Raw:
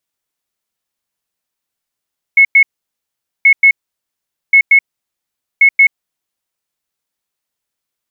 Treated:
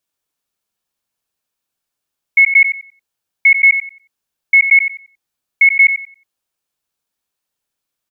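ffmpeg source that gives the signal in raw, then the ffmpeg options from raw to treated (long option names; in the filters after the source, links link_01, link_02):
-f lavfi -i "aevalsrc='0.708*sin(2*PI*2190*t)*clip(min(mod(mod(t,1.08),0.18),0.08-mod(mod(t,1.08),0.18))/0.005,0,1)*lt(mod(t,1.08),0.36)':duration=4.32:sample_rate=44100"
-filter_complex "[0:a]bandreject=frequency=2000:width=12,asplit=2[link_01][link_02];[link_02]adelay=91,lowpass=frequency=2000:poles=1,volume=-6dB,asplit=2[link_03][link_04];[link_04]adelay=91,lowpass=frequency=2000:poles=1,volume=0.34,asplit=2[link_05][link_06];[link_06]adelay=91,lowpass=frequency=2000:poles=1,volume=0.34,asplit=2[link_07][link_08];[link_08]adelay=91,lowpass=frequency=2000:poles=1,volume=0.34[link_09];[link_01][link_03][link_05][link_07][link_09]amix=inputs=5:normalize=0"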